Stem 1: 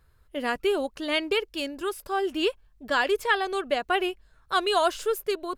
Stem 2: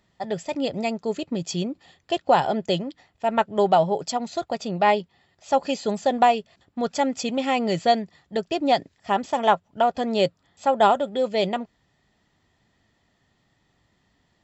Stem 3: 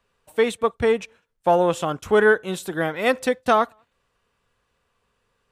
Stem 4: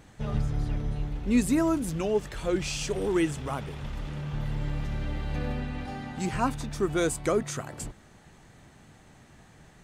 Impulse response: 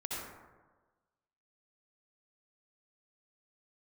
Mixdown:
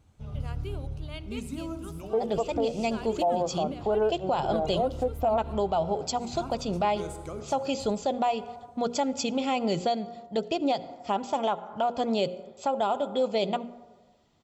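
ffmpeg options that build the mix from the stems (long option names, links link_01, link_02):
-filter_complex "[0:a]volume=-16.5dB,asplit=2[link_01][link_02];[link_02]volume=-16.5dB[link_03];[1:a]adelay=2000,volume=-0.5dB,asplit=2[link_04][link_05];[link_05]volume=-20.5dB[link_06];[2:a]lowpass=frequency=710:width_type=q:width=4.9,adelay=1750,volume=-6.5dB[link_07];[3:a]equalizer=frequency=82:width=1.4:gain=14.5,volume=-15dB,asplit=2[link_08][link_09];[link_09]volume=-8.5dB[link_10];[4:a]atrim=start_sample=2205[link_11];[link_03][link_06][link_10]amix=inputs=3:normalize=0[link_12];[link_12][link_11]afir=irnorm=-1:irlink=0[link_13];[link_01][link_04][link_07][link_08][link_13]amix=inputs=5:normalize=0,equalizer=frequency=1800:width=5.1:gain=-13,bandreject=frequency=60:width_type=h:width=6,bandreject=frequency=120:width_type=h:width=6,bandreject=frequency=180:width_type=h:width=6,bandreject=frequency=240:width_type=h:width=6,bandreject=frequency=300:width_type=h:width=6,bandreject=frequency=360:width_type=h:width=6,bandreject=frequency=420:width_type=h:width=6,bandreject=frequency=480:width_type=h:width=6,bandreject=frequency=540:width_type=h:width=6,alimiter=limit=-17.5dB:level=0:latency=1:release=194"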